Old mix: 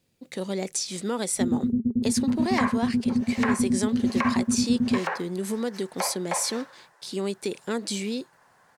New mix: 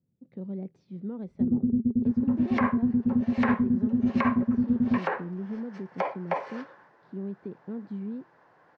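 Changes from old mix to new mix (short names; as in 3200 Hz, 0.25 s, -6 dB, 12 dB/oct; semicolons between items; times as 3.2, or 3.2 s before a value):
speech: add band-pass 150 Hz, Q 1.4; second sound: remove HPF 620 Hz 12 dB/oct; master: add air absorption 240 m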